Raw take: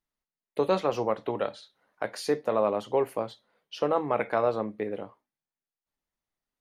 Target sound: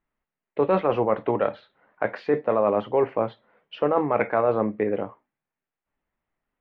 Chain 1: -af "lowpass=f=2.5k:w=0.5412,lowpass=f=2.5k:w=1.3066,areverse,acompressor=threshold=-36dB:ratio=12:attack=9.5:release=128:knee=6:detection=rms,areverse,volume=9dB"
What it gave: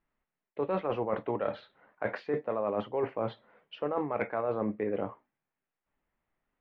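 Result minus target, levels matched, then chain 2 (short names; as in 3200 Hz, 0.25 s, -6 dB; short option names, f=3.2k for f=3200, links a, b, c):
compressor: peak gain reduction +10.5 dB
-af "lowpass=f=2.5k:w=0.5412,lowpass=f=2.5k:w=1.3066,areverse,acompressor=threshold=-24.5dB:ratio=12:attack=9.5:release=128:knee=6:detection=rms,areverse,volume=9dB"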